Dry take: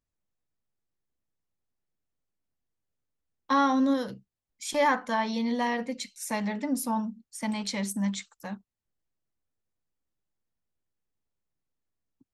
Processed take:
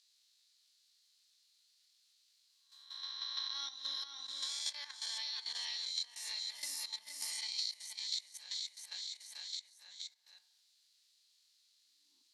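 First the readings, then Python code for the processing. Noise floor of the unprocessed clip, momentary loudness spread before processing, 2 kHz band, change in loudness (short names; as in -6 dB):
under -85 dBFS, 14 LU, -16.0 dB, -11.0 dB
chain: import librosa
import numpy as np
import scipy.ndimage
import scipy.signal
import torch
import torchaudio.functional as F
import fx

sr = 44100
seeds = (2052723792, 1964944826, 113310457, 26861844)

p1 = fx.spec_swells(x, sr, rise_s=0.79)
p2 = fx.ladder_bandpass(p1, sr, hz=4600.0, resonance_pct=65)
p3 = fx.high_shelf(p2, sr, hz=7100.0, db=10.0)
p4 = fx.transient(p3, sr, attack_db=4, sustain_db=-9)
p5 = p4 + fx.echo_feedback(p4, sr, ms=469, feedback_pct=37, wet_db=-6.0, dry=0)
p6 = fx.rev_fdn(p5, sr, rt60_s=0.9, lf_ratio=0.7, hf_ratio=0.3, size_ms=20.0, drr_db=10.5)
p7 = fx.level_steps(p6, sr, step_db=12)
p8 = fx.high_shelf(p7, sr, hz=3500.0, db=-9.5)
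p9 = fx.band_squash(p8, sr, depth_pct=100)
y = F.gain(torch.from_numpy(p9), 12.0).numpy()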